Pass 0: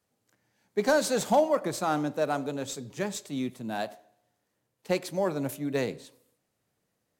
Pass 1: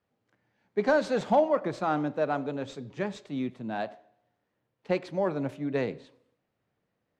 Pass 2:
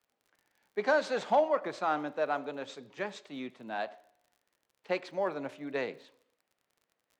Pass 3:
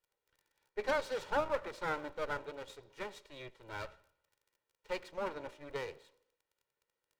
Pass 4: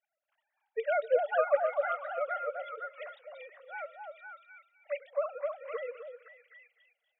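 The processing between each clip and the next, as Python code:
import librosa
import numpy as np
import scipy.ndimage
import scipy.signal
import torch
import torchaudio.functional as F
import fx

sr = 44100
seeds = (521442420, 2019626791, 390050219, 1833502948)

y1 = scipy.signal.sosfilt(scipy.signal.butter(2, 2900.0, 'lowpass', fs=sr, output='sos'), x)
y2 = fx.weighting(y1, sr, curve='A')
y2 = fx.dmg_crackle(y2, sr, seeds[0], per_s=47.0, level_db=-52.0)
y2 = y2 * librosa.db_to_amplitude(-1.0)
y3 = fx.lower_of_two(y2, sr, delay_ms=2.1)
y3 = y3 * librosa.db_to_amplitude(-5.0)
y4 = fx.sine_speech(y3, sr)
y4 = fx.echo_stepped(y4, sr, ms=255, hz=820.0, octaves=0.7, feedback_pct=70, wet_db=-1.0)
y4 = y4 * librosa.db_to_amplitude(4.5)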